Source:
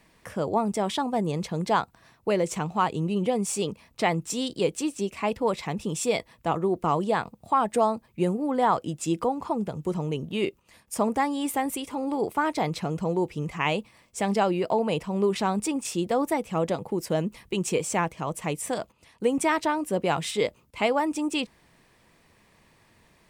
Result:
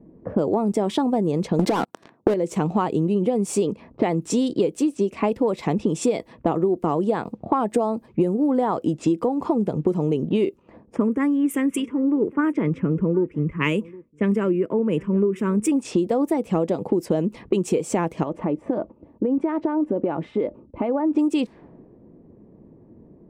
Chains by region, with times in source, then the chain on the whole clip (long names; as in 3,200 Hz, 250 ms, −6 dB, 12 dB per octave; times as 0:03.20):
0:01.59–0:02.34: high-pass filter 160 Hz + leveller curve on the samples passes 5 + downward compressor, threshold −16 dBFS
0:10.96–0:15.72: phaser with its sweep stopped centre 1,800 Hz, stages 4 + single-tap delay 764 ms −22.5 dB + multiband upward and downward expander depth 100%
0:18.23–0:21.15: comb filter 3.4 ms, depth 33% + downward compressor 5 to 1, threshold −35 dBFS
whole clip: low-pass that shuts in the quiet parts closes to 360 Hz, open at −25 dBFS; parametric band 320 Hz +14.5 dB 2.4 octaves; downward compressor 12 to 1, threshold −23 dBFS; level +5.5 dB